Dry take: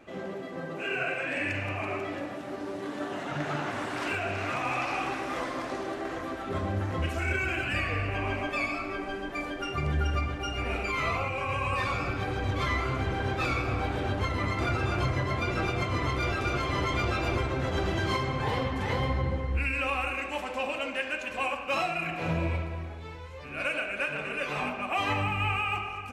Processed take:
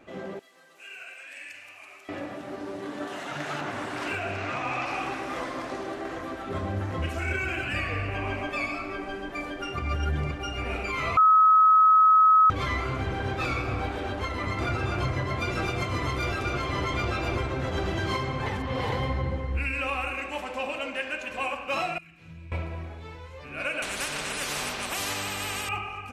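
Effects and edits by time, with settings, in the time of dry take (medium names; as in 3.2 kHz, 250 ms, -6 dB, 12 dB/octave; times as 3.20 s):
0.39–2.09 s: differentiator
3.07–3.61 s: tilt EQ +2 dB/octave
4.37–4.86 s: low-pass 7.1 kHz
9.79–10.31 s: reverse
11.17–12.50 s: bleep 1.28 kHz -14 dBFS
13.89–14.47 s: peaking EQ 130 Hz -12 dB
15.39–16.41 s: treble shelf 4.6 kHz -> 8.3 kHz +7 dB
18.46–18.92 s: reverse
21.98–22.52 s: amplifier tone stack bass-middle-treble 6-0-2
23.82–25.69 s: spectrum-flattening compressor 4:1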